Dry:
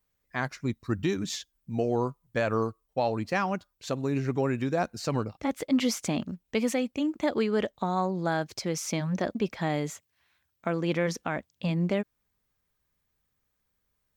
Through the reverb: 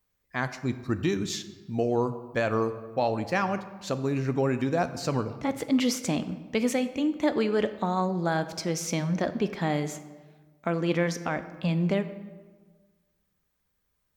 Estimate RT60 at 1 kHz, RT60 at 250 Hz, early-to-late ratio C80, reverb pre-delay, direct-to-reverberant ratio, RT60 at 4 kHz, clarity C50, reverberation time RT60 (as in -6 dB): 1.3 s, 1.6 s, 14.0 dB, 8 ms, 10.5 dB, 0.90 s, 12.5 dB, 1.4 s